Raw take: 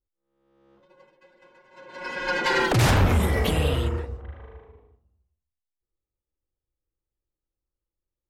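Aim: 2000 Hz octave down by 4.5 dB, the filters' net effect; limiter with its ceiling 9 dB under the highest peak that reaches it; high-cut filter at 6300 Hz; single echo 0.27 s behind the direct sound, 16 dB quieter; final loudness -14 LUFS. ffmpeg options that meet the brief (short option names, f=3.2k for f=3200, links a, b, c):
-af "lowpass=6.3k,equalizer=f=2k:t=o:g=-6,alimiter=limit=-21dB:level=0:latency=1,aecho=1:1:270:0.158,volume=16dB"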